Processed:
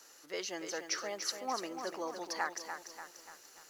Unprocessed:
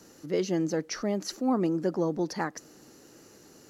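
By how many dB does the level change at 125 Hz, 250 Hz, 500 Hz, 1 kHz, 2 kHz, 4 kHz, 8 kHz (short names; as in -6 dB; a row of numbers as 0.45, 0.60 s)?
-28.0, -18.5, -11.0, -2.5, +0.5, +1.0, +1.0 dB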